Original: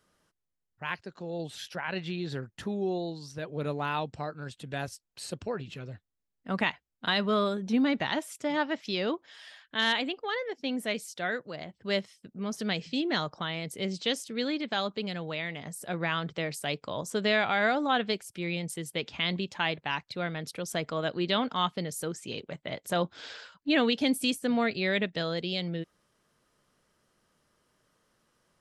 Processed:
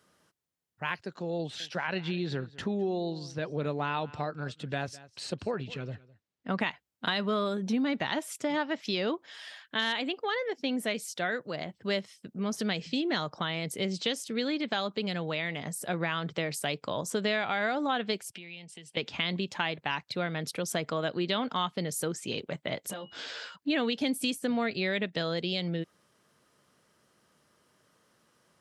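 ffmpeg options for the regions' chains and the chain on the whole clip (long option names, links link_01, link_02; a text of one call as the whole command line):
ffmpeg -i in.wav -filter_complex "[0:a]asettb=1/sr,asplit=3[link_01][link_02][link_03];[link_01]atrim=end=1.394[link_04];[link_02]atrim=start=1.39:end=6.61,asetpts=PTS-STARTPTS,afade=type=in:duration=0.004:curve=qsin,afade=type=out:start_time=5.216:duration=0.004:curve=qsin,lowpass=5800,aecho=1:1:208:0.0841,atrim=end_sample=230202[link_05];[link_03]atrim=start=6.606[link_06];[link_04][link_05]acrossfade=duration=0.004:curve1=hsin:curve2=qsin[link_07];[link_07][link_06]acrossfade=duration=0.004:curve1=qsin:curve2=hsin,asettb=1/sr,asplit=3[link_08][link_09][link_10];[link_08]atrim=end=18.314[link_11];[link_09]atrim=start=18.31:end=18.97,asetpts=PTS-STARTPTS,afade=type=in:duration=0.004:curve=qsin,afade=type=out:start_time=0.656:duration=0.004:curve=qsin,acompressor=threshold=-44dB:ratio=8:attack=3.2:release=140:knee=1:detection=peak,highpass=200,equalizer=frequency=310:width_type=q:width=4:gain=-9,equalizer=frequency=500:width_type=q:width=4:gain=-6,equalizer=frequency=1300:width_type=q:width=4:gain=-8,equalizer=frequency=2800:width_type=q:width=4:gain=8,equalizer=frequency=6700:width_type=q:width=4:gain=-5,lowpass=frequency=8100:width=0.5412,lowpass=frequency=8100:width=1.3066[link_12];[link_10]atrim=start=18.966[link_13];[link_11][link_12]acrossfade=duration=0.004:curve1=hsin:curve2=qsin[link_14];[link_14][link_13]acrossfade=duration=0.004:curve1=qsin:curve2=hsin,asettb=1/sr,asplit=3[link_15][link_16][link_17];[link_15]atrim=end=22.914[link_18];[link_16]atrim=start=22.91:end=23.56,asetpts=PTS-STARTPTS,afade=type=in:duration=0.004:curve=qsin,afade=type=out:start_time=0.646:duration=0.004:curve=qsin,acompressor=threshold=-41dB:ratio=16:attack=3.2:release=140:knee=1:detection=peak,aeval=exprs='val(0)+0.00398*sin(2*PI*2900*n/s)':channel_layout=same,asplit=2[link_19][link_20];[link_20]adelay=15,volume=-3dB[link_21];[link_19][link_21]amix=inputs=2:normalize=0,atrim=end_sample=28665[link_22];[link_17]atrim=start=23.556[link_23];[link_18][link_22]acrossfade=duration=0.004:curve1=hsin:curve2=qsin[link_24];[link_24][link_23]acrossfade=duration=0.004:curve1=qsin:curve2=hsin,acompressor=threshold=-32dB:ratio=3,highpass=91,volume=4dB" out.wav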